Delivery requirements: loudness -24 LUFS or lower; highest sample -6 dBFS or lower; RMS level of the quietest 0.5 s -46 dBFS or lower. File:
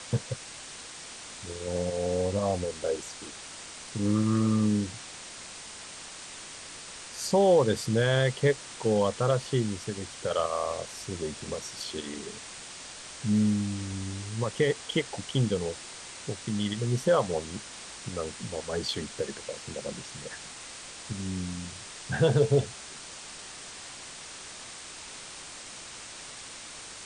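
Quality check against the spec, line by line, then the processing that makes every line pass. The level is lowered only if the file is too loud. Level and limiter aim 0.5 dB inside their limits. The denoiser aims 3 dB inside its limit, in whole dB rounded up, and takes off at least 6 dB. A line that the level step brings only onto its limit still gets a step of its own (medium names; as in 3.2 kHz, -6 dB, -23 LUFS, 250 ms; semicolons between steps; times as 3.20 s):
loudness -31.0 LUFS: pass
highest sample -11.0 dBFS: pass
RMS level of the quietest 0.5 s -44 dBFS: fail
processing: noise reduction 6 dB, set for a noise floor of -44 dBFS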